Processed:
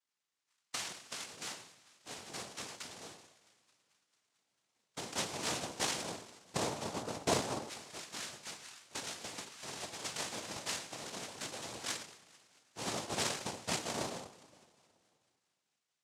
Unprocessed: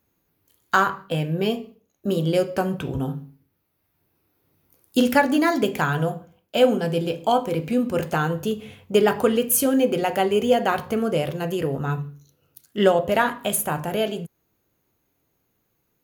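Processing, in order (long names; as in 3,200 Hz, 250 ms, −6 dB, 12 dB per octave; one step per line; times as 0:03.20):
sub-harmonics by changed cycles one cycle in 3, muted
downward compressor, threshold −23 dBFS, peak gain reduction 11 dB
coupled-rooms reverb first 0.47 s, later 2 s, from −17 dB, DRR 2.5 dB
auto-filter band-pass saw down 0.13 Hz 740–3,000 Hz
feedback echo with a high-pass in the loop 222 ms, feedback 78%, high-pass 770 Hz, level −22 dB
cochlear-implant simulation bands 2
level −3 dB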